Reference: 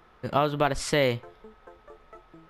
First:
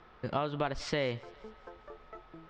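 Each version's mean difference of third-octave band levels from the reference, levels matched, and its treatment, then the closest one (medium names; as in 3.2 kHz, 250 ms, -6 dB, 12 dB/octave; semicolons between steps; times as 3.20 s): 5.5 dB: compression 2:1, threshold -35 dBFS, peak gain reduction 9.5 dB; low-pass 5.5 kHz 24 dB/octave; thinning echo 198 ms, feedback 59%, level -23 dB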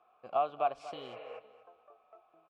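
7.5 dB: spectral replace 0.96–1.36 s, 450–2900 Hz before; vowel filter a; feedback delay 238 ms, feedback 27%, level -15 dB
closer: first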